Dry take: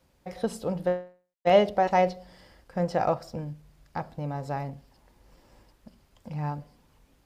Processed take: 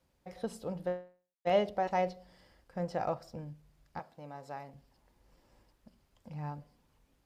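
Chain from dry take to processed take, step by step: 3.99–4.74 s: high-pass 460 Hz 6 dB/octave; trim -8.5 dB

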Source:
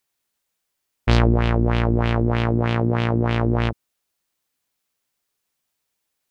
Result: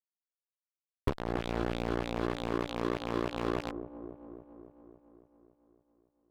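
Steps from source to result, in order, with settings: rattle on loud lows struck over -22 dBFS, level -20 dBFS; inverted gate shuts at -14 dBFS, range -25 dB; formant shift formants +4 st; tilt shelf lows +5.5 dB, about 840 Hz; inharmonic resonator 67 Hz, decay 0.27 s, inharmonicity 0.002; de-hum 86.22 Hz, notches 4; small resonant body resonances 390/1000/2400/3400 Hz, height 16 dB, ringing for 35 ms; compression 8:1, threshold -38 dBFS, peak gain reduction 15.5 dB; fuzz box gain 38 dB, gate -41 dBFS; feedback echo behind a low-pass 278 ms, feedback 65%, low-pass 650 Hz, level -16 dB; peak limiter -22.5 dBFS, peak gain reduction 10.5 dB; trim +3 dB

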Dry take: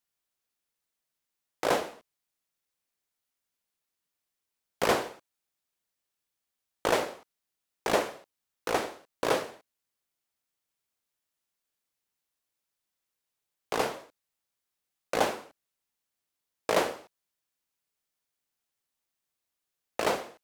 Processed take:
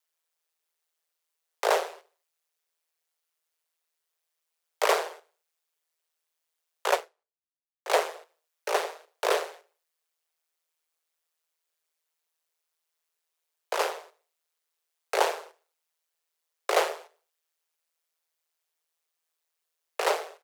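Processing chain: feedback delay 76 ms, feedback 49%, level -24 dB; ring modulator 81 Hz; steep high-pass 390 Hz 72 dB/octave; 6.91–7.90 s: upward expansion 2.5:1, over -47 dBFS; trim +5.5 dB

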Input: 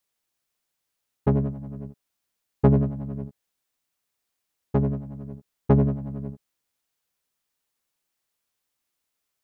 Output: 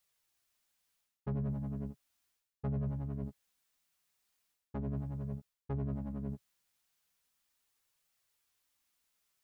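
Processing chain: peaking EQ 390 Hz -5.5 dB 2.1 oct; reverse; compression 12:1, threshold -35 dBFS, peak gain reduction 20.5 dB; reverse; flange 0.37 Hz, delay 1.4 ms, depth 4.3 ms, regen -51%; trim +5.5 dB

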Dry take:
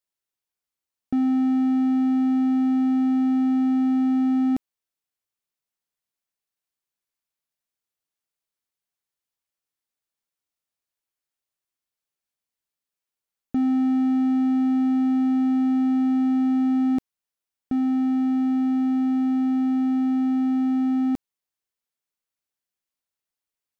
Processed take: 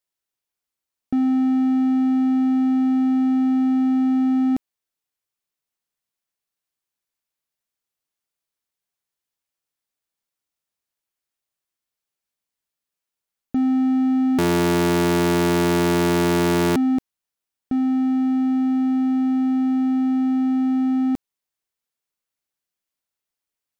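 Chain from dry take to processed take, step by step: 14.38–16.76 s: cycle switcher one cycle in 3, inverted; trim +2 dB

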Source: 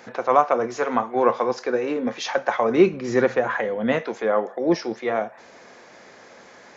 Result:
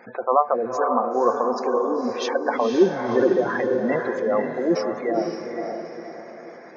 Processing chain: spectral gate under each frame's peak -15 dB strong; echo that smears into a reverb 518 ms, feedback 43%, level -4 dB; trim -1 dB

